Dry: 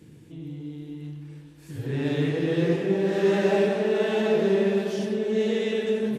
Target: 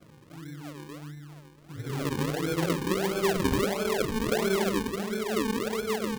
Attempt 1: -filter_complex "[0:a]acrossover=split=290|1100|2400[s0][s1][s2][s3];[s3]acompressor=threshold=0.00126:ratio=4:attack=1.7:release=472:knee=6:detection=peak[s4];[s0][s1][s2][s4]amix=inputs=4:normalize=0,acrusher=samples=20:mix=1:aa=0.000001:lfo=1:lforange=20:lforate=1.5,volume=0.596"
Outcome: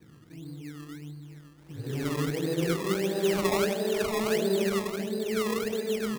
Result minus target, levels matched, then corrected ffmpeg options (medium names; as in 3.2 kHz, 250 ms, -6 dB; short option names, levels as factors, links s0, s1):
decimation with a swept rate: distortion -10 dB
-filter_complex "[0:a]acrossover=split=290|1100|2400[s0][s1][s2][s3];[s3]acompressor=threshold=0.00126:ratio=4:attack=1.7:release=472:knee=6:detection=peak[s4];[s0][s1][s2][s4]amix=inputs=4:normalize=0,acrusher=samples=45:mix=1:aa=0.000001:lfo=1:lforange=45:lforate=1.5,volume=0.596"